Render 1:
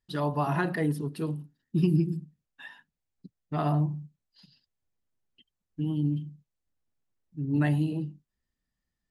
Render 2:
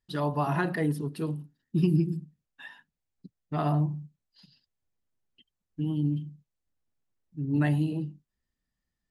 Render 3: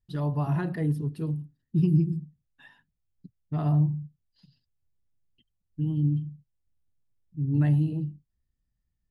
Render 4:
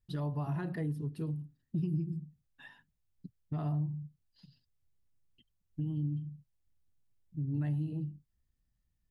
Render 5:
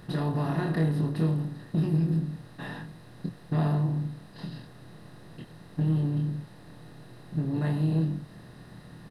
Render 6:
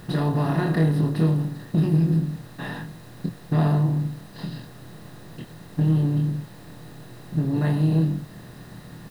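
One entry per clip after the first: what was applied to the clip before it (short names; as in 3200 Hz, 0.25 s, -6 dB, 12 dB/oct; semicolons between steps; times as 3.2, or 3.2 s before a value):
nothing audible
EQ curve 120 Hz 0 dB, 200 Hz -9 dB, 1200 Hz -16 dB; gain +8 dB
compressor 2.5:1, threshold -36 dBFS, peak gain reduction 12.5 dB
per-bin compression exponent 0.4; doubler 25 ms -3.5 dB; gain +3.5 dB
added noise white -64 dBFS; gain +5.5 dB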